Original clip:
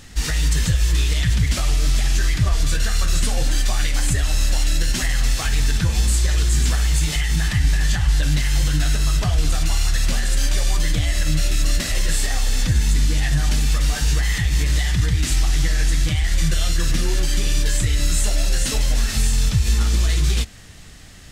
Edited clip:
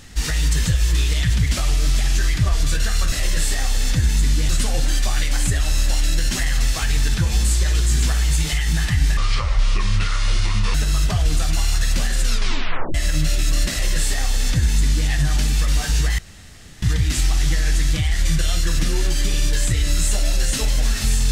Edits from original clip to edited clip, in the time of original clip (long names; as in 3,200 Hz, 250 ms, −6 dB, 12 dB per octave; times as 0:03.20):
0:07.80–0:08.87: play speed 68%
0:10.33: tape stop 0.74 s
0:11.84–0:13.21: duplicate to 0:03.12
0:14.31–0:14.95: fill with room tone